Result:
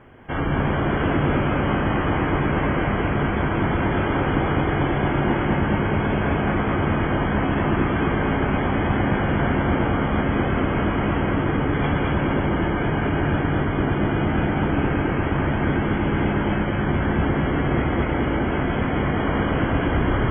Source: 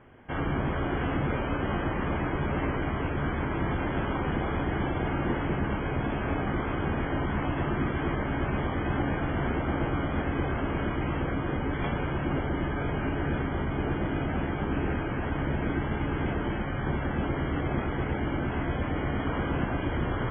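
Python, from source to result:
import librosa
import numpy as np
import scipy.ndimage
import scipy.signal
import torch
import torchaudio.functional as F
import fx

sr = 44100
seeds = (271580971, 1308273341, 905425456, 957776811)

y = fx.echo_feedback(x, sr, ms=214, feedback_pct=53, wet_db=-3)
y = y * 10.0 ** (6.0 / 20.0)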